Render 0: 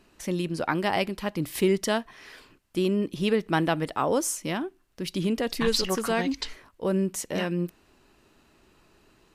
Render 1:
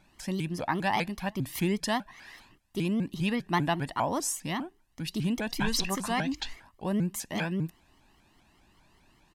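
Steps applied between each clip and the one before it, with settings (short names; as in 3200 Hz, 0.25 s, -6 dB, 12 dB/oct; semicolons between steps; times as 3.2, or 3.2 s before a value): comb 1.1 ms, depth 66%; shaped vibrato saw up 5 Hz, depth 250 cents; gain -4 dB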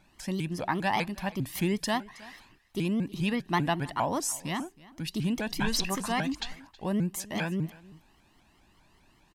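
echo 0.32 s -21 dB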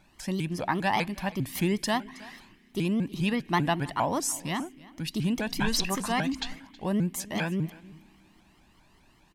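on a send at -11.5 dB: vowel filter i + reverb RT60 3.5 s, pre-delay 48 ms; on the sum: gain +1.5 dB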